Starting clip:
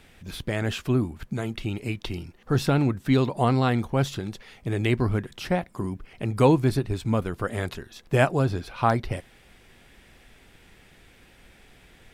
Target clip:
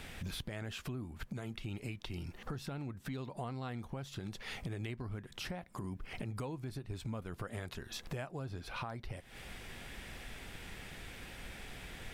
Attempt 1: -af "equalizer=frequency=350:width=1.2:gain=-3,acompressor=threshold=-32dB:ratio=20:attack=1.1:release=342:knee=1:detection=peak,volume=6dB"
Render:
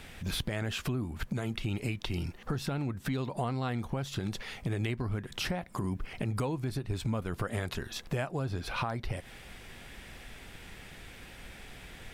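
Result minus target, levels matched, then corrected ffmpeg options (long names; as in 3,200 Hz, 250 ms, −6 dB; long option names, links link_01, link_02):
downward compressor: peak gain reduction −8.5 dB
-af "equalizer=frequency=350:width=1.2:gain=-3,acompressor=threshold=-41dB:ratio=20:attack=1.1:release=342:knee=1:detection=peak,volume=6dB"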